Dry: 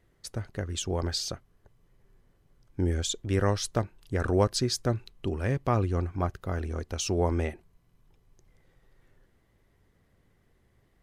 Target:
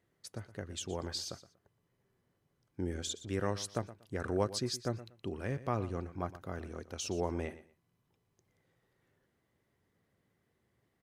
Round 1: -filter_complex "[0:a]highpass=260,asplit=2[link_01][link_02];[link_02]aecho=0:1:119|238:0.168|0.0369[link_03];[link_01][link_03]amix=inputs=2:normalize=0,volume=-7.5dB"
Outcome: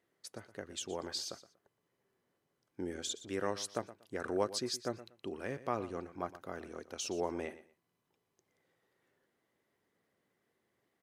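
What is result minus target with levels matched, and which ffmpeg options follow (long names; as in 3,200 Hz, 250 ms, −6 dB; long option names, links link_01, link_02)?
125 Hz band −10.0 dB
-filter_complex "[0:a]highpass=110,asplit=2[link_01][link_02];[link_02]aecho=0:1:119|238:0.168|0.0369[link_03];[link_01][link_03]amix=inputs=2:normalize=0,volume=-7.5dB"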